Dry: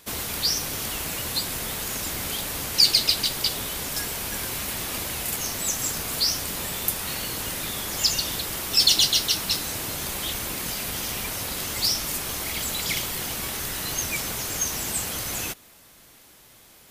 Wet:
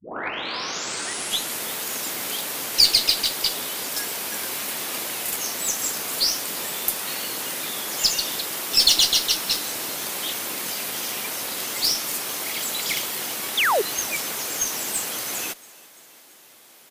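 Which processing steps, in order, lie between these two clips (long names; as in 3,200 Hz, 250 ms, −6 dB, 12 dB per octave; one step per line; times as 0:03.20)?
turntable start at the beginning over 1.66 s
high-pass filter 270 Hz 12 dB per octave
harmonic generator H 8 −29 dB, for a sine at −2.5 dBFS
sound drawn into the spectrogram fall, 0:13.57–0:13.82, 360–3,900 Hz −21 dBFS
on a send: echo with shifted repeats 339 ms, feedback 63%, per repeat +42 Hz, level −23 dB
on the sum: level +1.5 dB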